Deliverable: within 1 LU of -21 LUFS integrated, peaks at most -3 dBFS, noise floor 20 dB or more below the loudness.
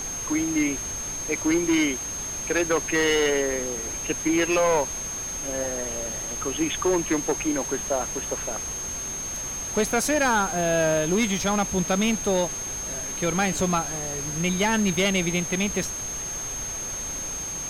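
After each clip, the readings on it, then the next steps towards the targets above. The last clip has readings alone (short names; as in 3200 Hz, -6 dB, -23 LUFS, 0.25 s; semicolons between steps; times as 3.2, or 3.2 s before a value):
steady tone 6400 Hz; tone level -30 dBFS; noise floor -32 dBFS; noise floor target -45 dBFS; loudness -24.5 LUFS; peak -13.5 dBFS; loudness target -21.0 LUFS
-> notch 6400 Hz, Q 30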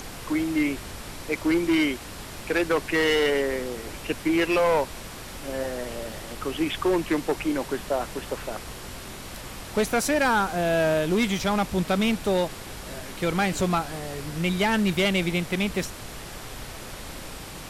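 steady tone none; noise floor -39 dBFS; noise floor target -46 dBFS
-> noise print and reduce 7 dB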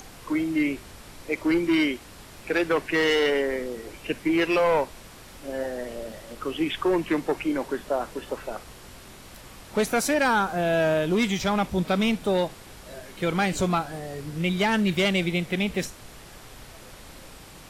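noise floor -46 dBFS; loudness -25.5 LUFS; peak -15.5 dBFS; loudness target -21.0 LUFS
-> gain +4.5 dB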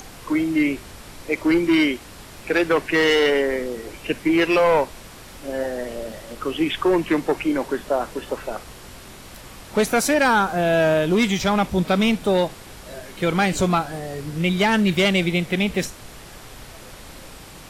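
loudness -21.0 LUFS; peak -11.0 dBFS; noise floor -42 dBFS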